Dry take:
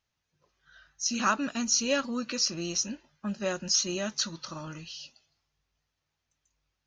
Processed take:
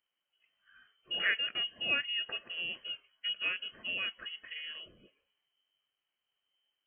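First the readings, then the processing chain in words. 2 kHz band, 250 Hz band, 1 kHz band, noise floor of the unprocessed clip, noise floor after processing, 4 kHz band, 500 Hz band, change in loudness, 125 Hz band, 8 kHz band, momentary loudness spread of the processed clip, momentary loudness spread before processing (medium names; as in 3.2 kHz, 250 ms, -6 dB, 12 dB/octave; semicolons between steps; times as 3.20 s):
+3.0 dB, -23.5 dB, -15.0 dB, -83 dBFS, under -85 dBFS, -0.5 dB, -17.0 dB, -5.0 dB, -20.5 dB, under -40 dB, 12 LU, 15 LU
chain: frequency inversion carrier 3.1 kHz; tilt EQ +2 dB/octave; trim -6 dB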